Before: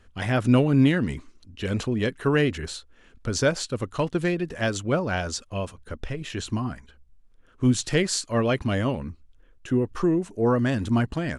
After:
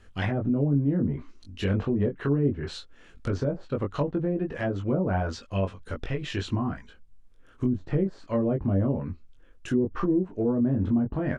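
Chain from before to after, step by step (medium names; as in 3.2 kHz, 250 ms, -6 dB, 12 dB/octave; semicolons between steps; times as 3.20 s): low-pass that closes with the level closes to 480 Hz, closed at -20 dBFS; peak limiter -18.5 dBFS, peak gain reduction 9.5 dB; doubling 21 ms -3.5 dB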